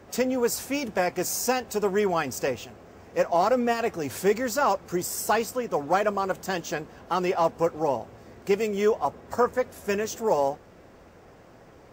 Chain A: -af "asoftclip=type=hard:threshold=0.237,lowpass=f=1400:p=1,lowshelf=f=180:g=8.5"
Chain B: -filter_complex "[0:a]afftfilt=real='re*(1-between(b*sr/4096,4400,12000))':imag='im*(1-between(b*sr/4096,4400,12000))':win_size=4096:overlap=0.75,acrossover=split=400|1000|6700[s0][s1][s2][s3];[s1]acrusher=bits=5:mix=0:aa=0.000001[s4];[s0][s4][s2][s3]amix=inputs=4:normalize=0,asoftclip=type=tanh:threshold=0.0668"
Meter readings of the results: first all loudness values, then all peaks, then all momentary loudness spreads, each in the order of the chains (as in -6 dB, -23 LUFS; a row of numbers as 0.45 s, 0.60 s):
-26.5 LUFS, -30.5 LUFS; -11.5 dBFS, -23.5 dBFS; 7 LU, 6 LU